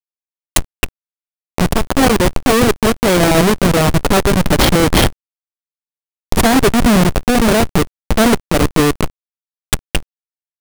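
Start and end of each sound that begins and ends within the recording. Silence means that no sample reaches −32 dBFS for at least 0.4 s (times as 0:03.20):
0:00.56–0:00.89
0:01.58–0:05.13
0:06.32–0:09.10
0:09.73–0:10.03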